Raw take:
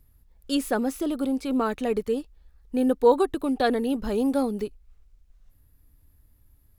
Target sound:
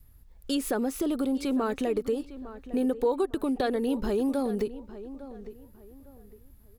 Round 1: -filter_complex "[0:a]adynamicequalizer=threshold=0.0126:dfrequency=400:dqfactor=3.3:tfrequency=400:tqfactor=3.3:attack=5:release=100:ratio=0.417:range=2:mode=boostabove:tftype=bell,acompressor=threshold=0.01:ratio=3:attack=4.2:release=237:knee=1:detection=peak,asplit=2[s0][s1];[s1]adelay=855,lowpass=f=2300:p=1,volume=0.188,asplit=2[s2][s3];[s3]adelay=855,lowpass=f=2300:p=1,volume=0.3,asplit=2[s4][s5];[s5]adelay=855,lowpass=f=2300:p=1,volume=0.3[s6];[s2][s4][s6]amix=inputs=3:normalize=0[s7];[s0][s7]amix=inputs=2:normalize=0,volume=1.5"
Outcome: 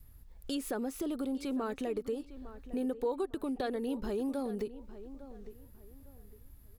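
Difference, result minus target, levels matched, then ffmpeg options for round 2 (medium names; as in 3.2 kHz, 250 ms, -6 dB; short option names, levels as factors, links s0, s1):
compression: peak gain reduction +7.5 dB
-filter_complex "[0:a]adynamicequalizer=threshold=0.0126:dfrequency=400:dqfactor=3.3:tfrequency=400:tqfactor=3.3:attack=5:release=100:ratio=0.417:range=2:mode=boostabove:tftype=bell,acompressor=threshold=0.0355:ratio=3:attack=4.2:release=237:knee=1:detection=peak,asplit=2[s0][s1];[s1]adelay=855,lowpass=f=2300:p=1,volume=0.188,asplit=2[s2][s3];[s3]adelay=855,lowpass=f=2300:p=1,volume=0.3,asplit=2[s4][s5];[s5]adelay=855,lowpass=f=2300:p=1,volume=0.3[s6];[s2][s4][s6]amix=inputs=3:normalize=0[s7];[s0][s7]amix=inputs=2:normalize=0,volume=1.5"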